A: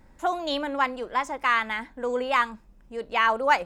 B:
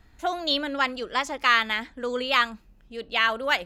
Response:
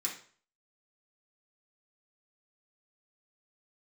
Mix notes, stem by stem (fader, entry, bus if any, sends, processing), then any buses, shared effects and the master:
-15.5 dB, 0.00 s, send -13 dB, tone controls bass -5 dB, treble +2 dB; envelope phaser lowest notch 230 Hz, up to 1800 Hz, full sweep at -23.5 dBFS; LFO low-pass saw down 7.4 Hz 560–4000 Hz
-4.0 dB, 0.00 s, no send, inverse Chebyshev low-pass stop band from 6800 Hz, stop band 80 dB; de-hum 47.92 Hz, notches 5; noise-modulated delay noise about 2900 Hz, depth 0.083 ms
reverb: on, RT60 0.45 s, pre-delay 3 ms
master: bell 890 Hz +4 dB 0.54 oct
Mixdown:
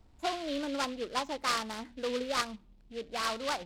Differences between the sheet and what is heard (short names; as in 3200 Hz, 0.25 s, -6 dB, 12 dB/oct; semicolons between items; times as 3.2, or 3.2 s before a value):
stem A: missing LFO low-pass saw down 7.4 Hz 560–4000 Hz; master: missing bell 890 Hz +4 dB 0.54 oct